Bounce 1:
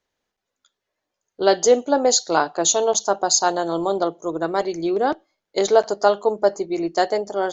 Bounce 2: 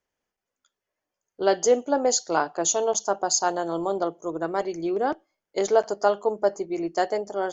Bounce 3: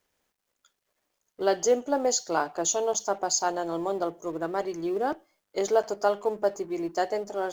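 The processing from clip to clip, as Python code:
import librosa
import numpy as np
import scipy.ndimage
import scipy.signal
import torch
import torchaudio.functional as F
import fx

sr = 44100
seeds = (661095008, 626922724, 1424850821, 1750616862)

y1 = fx.peak_eq(x, sr, hz=3900.0, db=-11.5, octaves=0.25)
y1 = y1 * 10.0 ** (-4.5 / 20.0)
y2 = fx.law_mismatch(y1, sr, coded='mu')
y2 = y2 * 10.0 ** (-3.5 / 20.0)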